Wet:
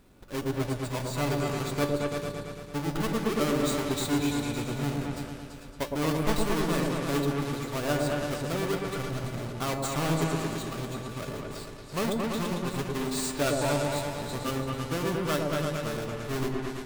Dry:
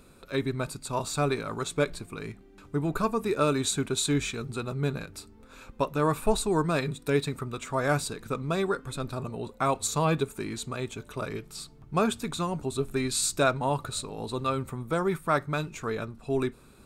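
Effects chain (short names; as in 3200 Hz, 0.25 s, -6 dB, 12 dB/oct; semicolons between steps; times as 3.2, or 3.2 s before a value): half-waves squared off; resonator 290 Hz, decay 0.42 s, harmonics all, mix 70%; repeats that get brighter 0.112 s, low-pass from 750 Hz, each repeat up 2 oct, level 0 dB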